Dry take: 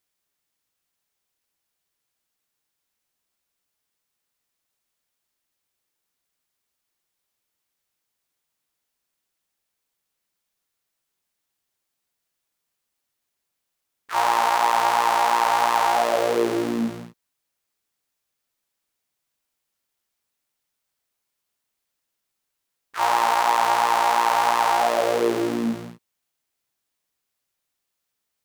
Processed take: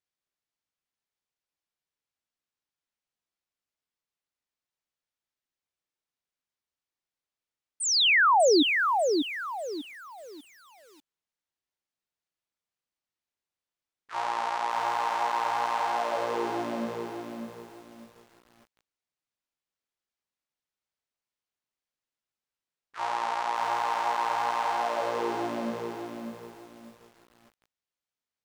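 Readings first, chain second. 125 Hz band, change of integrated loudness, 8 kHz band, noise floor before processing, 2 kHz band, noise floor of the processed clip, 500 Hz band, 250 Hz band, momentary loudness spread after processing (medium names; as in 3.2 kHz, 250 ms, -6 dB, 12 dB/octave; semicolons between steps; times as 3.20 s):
-8.5 dB, -6.0 dB, -0.5 dB, -80 dBFS, -0.5 dB, under -85 dBFS, -4.0 dB, -4.0 dB, 20 LU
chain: treble shelf 9.9 kHz +9 dB; feedback comb 130 Hz, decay 1.9 s, mix 40%; painted sound fall, 7.80–8.63 s, 270–9200 Hz -14 dBFS; distance through air 93 m; bit-crushed delay 594 ms, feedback 35%, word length 8-bit, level -4.5 dB; trim -5.5 dB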